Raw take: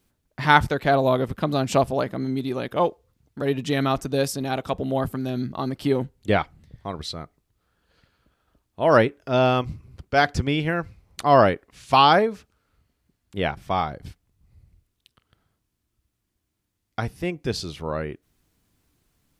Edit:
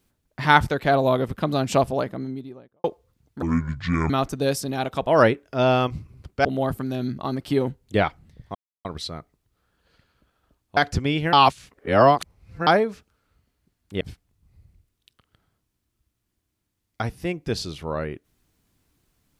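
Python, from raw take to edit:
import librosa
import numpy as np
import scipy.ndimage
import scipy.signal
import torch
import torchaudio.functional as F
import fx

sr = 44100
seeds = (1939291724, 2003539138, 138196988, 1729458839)

y = fx.studio_fade_out(x, sr, start_s=1.84, length_s=1.0)
y = fx.edit(y, sr, fx.speed_span(start_s=3.42, length_s=0.4, speed=0.59),
    fx.insert_silence(at_s=6.89, length_s=0.3),
    fx.move(start_s=8.81, length_s=1.38, to_s=4.79),
    fx.reverse_span(start_s=10.75, length_s=1.34),
    fx.cut(start_s=13.43, length_s=0.56), tone=tone)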